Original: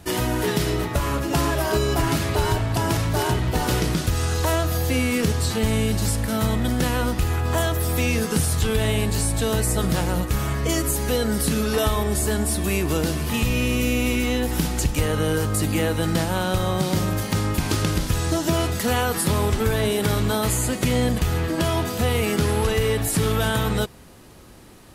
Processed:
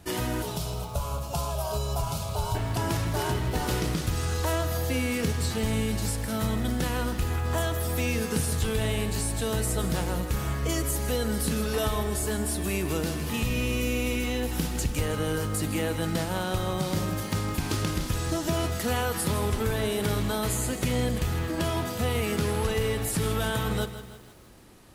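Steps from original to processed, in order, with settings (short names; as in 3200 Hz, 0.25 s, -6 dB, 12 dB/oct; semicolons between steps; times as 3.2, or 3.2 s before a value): 0.42–2.55 fixed phaser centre 760 Hz, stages 4; lo-fi delay 0.16 s, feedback 55%, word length 7-bit, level -12 dB; gain -6 dB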